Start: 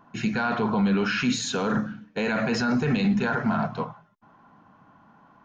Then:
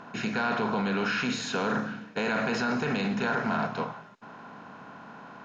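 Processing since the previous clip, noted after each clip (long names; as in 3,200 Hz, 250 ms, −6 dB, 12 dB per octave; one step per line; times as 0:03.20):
compressor on every frequency bin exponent 0.6
low-pass filter 3,300 Hz 6 dB per octave
low-shelf EQ 260 Hz −10 dB
level −3 dB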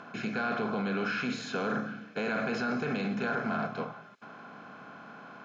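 high-shelf EQ 5,700 Hz −8 dB
notch comb filter 940 Hz
one half of a high-frequency compander encoder only
level −2.5 dB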